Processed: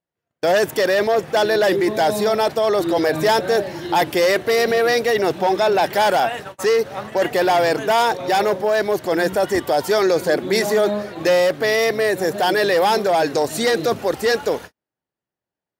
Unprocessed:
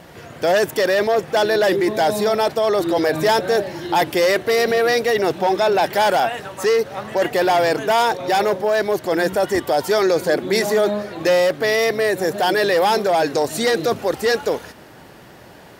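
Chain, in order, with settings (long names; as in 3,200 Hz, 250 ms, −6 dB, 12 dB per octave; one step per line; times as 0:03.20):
noise gate −31 dBFS, range −46 dB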